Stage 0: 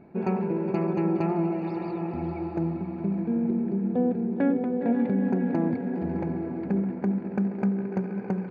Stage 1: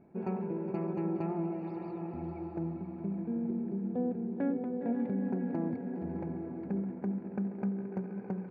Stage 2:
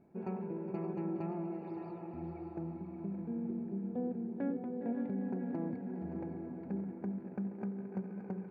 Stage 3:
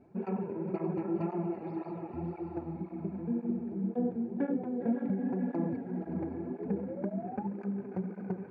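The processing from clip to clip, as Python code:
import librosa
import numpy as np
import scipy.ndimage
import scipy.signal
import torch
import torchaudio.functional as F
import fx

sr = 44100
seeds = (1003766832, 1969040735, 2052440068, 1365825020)

y1 = fx.high_shelf(x, sr, hz=2300.0, db=-9.0)
y1 = y1 * 10.0 ** (-8.0 / 20.0)
y2 = y1 + 10.0 ** (-10.5 / 20.0) * np.pad(y1, (int(573 * sr / 1000.0), 0))[:len(y1)]
y2 = y2 * 10.0 ** (-4.5 / 20.0)
y3 = fx.spec_paint(y2, sr, seeds[0], shape='rise', start_s=6.47, length_s=1.0, low_hz=360.0, high_hz=870.0, level_db=-47.0)
y3 = fx.air_absorb(y3, sr, metres=60.0)
y3 = fx.flanger_cancel(y3, sr, hz=1.9, depth_ms=6.4)
y3 = y3 * 10.0 ** (8.0 / 20.0)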